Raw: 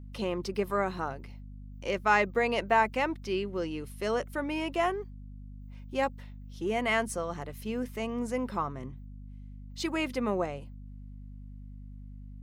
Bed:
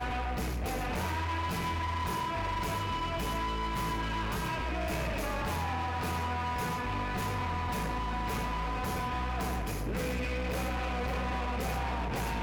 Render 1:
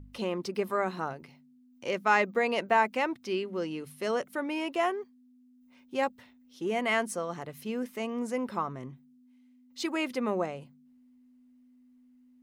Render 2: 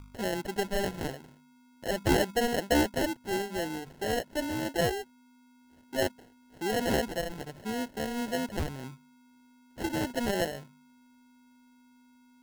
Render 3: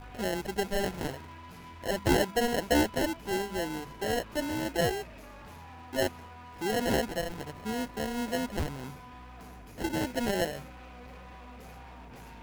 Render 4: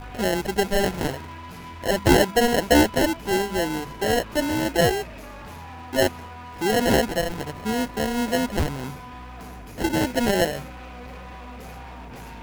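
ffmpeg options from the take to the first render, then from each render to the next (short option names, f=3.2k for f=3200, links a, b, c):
-af "bandreject=f=50:t=h:w=4,bandreject=f=100:t=h:w=4,bandreject=f=150:t=h:w=4,bandreject=f=200:t=h:w=4"
-af "acrusher=samples=37:mix=1:aa=0.000001,volume=16.5dB,asoftclip=hard,volume=-16.5dB"
-filter_complex "[1:a]volume=-15dB[a];[0:a][a]amix=inputs=2:normalize=0"
-af "volume=8.5dB"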